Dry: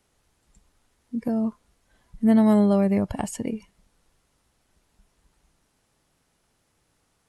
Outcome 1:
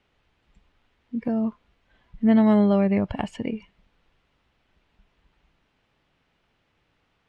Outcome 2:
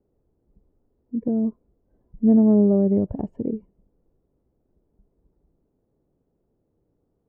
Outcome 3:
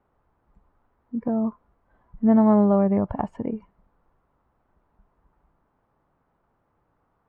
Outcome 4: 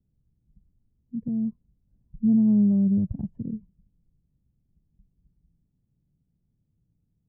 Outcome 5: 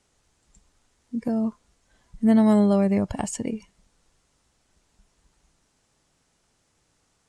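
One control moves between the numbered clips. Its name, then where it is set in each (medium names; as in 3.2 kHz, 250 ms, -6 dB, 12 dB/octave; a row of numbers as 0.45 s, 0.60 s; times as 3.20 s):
resonant low-pass, frequency: 2.9 kHz, 420 Hz, 1.1 kHz, 160 Hz, 7.6 kHz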